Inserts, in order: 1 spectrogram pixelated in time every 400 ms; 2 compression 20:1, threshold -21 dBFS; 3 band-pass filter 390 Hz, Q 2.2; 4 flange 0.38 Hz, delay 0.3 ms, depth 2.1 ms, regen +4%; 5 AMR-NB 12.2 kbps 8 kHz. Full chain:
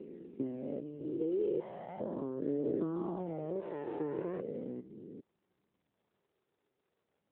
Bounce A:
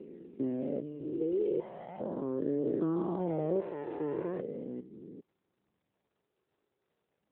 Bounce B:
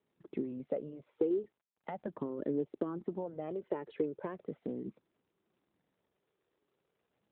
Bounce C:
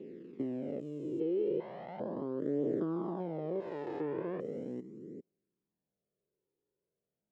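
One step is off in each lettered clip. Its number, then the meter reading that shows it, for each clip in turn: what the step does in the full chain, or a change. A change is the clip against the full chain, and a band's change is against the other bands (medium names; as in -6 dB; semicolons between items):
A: 2, mean gain reduction 2.0 dB; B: 1, 2 kHz band +3.5 dB; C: 5, 2 kHz band +2.5 dB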